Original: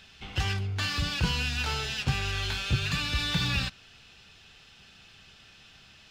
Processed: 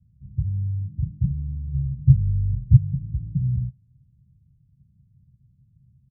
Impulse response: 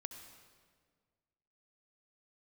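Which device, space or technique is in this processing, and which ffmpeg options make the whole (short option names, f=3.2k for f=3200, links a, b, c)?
the neighbour's flat through the wall: -filter_complex "[0:a]highpass=52,asettb=1/sr,asplit=3[a][b][c];[a]atrim=end=1.744[d];[b]atrim=start=1.74:end=2.77,asetpts=PTS-STARTPTS,afade=t=in:d=0.004:c=qsin,afade=t=out:st=1.026:d=0.004:c=qsin,lowshelf=f=230:g=8.5[e];[c]atrim=start=2.766[f];[d][e]acrossfade=d=0.004:c1=hsin:c2=qsin[g];[g][f]acrossfade=d=0.004:c1=qsin:c2=hsin,lowpass=f=160:w=0.5412,lowpass=f=160:w=1.3066,equalizer=f=130:t=o:w=0.59:g=7.5,acrossover=split=590[h][i];[i]adelay=70[j];[h][j]amix=inputs=2:normalize=0,volume=4dB"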